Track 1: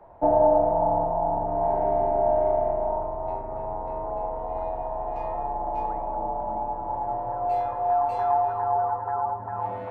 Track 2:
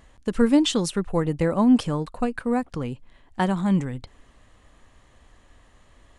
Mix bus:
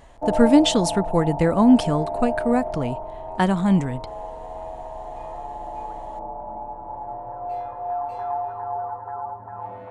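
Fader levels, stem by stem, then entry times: −4.5, +3.0 decibels; 0.00, 0.00 seconds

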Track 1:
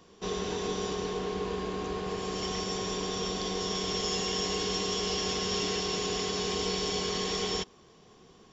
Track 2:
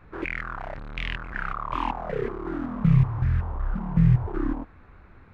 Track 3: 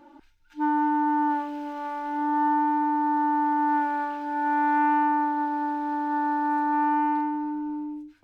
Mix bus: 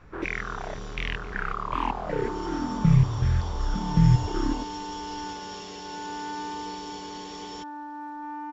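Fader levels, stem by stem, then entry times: −10.5, 0.0, −13.0 decibels; 0.00, 0.00, 1.50 seconds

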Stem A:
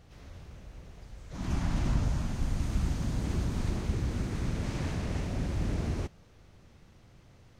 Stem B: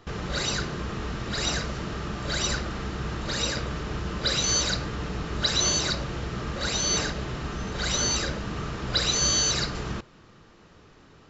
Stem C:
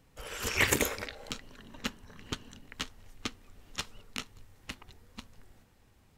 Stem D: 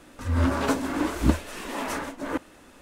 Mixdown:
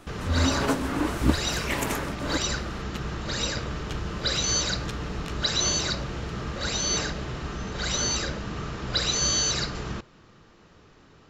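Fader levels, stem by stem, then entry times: −13.0, −1.0, −5.0, −1.0 decibels; 1.50, 0.00, 1.10, 0.00 seconds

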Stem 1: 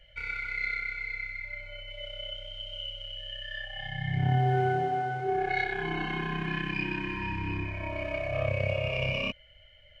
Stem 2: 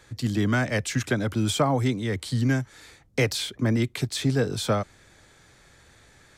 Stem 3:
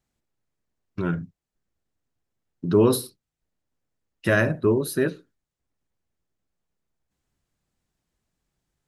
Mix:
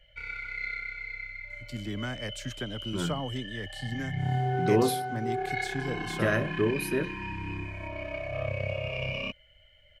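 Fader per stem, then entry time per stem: −3.0, −11.5, −6.5 decibels; 0.00, 1.50, 1.95 seconds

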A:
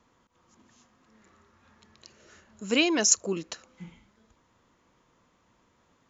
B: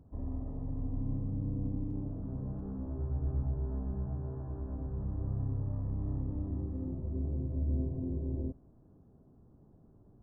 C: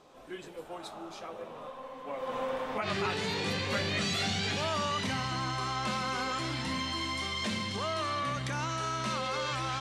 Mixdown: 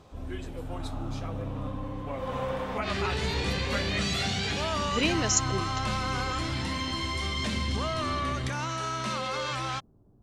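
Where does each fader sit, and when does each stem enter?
−4.0, −0.5, +1.5 decibels; 2.25, 0.00, 0.00 seconds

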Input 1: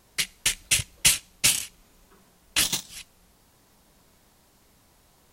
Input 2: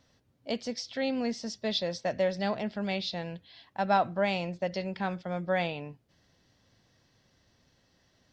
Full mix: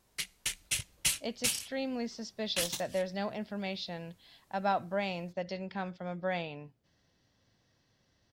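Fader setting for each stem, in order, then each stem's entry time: −10.5, −5.0 decibels; 0.00, 0.75 seconds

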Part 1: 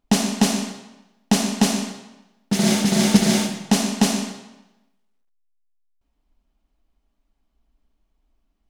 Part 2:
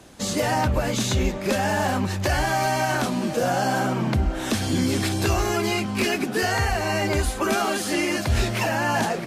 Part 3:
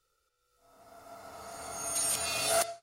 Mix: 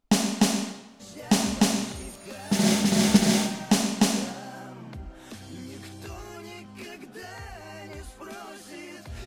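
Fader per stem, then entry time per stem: −3.5, −18.0, −15.5 decibels; 0.00, 0.80, 0.00 seconds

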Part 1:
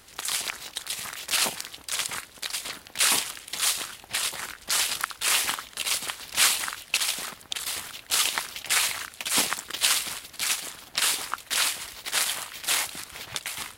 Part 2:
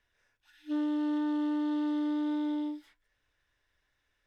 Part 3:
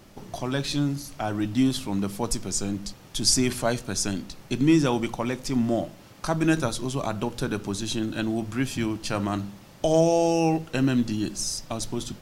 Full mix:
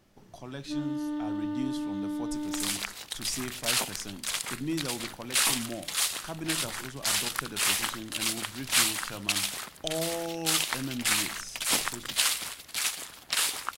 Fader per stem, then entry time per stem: −3.0, −2.5, −13.0 decibels; 2.35, 0.00, 0.00 seconds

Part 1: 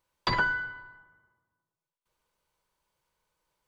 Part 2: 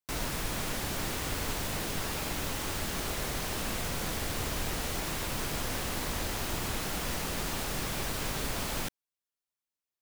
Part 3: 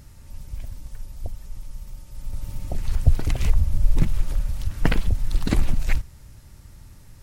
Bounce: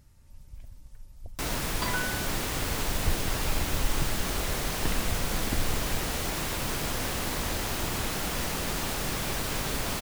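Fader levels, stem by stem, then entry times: −6.5, +3.0, −12.0 decibels; 1.55, 1.30, 0.00 seconds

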